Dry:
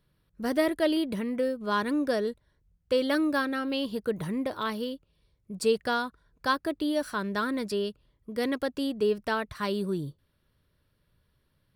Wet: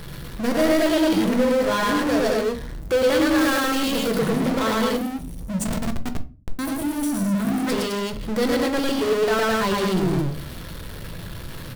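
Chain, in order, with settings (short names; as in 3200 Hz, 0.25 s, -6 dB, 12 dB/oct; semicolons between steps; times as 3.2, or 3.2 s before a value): loudspeakers at several distances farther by 38 m 0 dB, 72 m -3 dB; 4.96–7.67 spectral gain 290–5700 Hz -21 dB; power-law curve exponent 0.35; 3.38–4.19 high shelf 6900 Hz +6.5 dB; 5.64–6.59 Schmitt trigger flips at -16.5 dBFS; shoebox room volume 170 m³, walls furnished, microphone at 0.69 m; gain -5.5 dB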